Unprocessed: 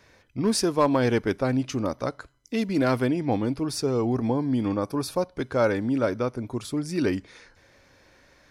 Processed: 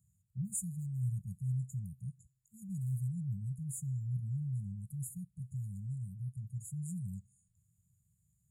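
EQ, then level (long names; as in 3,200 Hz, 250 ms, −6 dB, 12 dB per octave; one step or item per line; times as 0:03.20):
high-pass filter 96 Hz
linear-phase brick-wall band-stop 190–6,700 Hz
dynamic equaliser 130 Hz, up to +3 dB, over −47 dBFS, Q 1.8
−5.0 dB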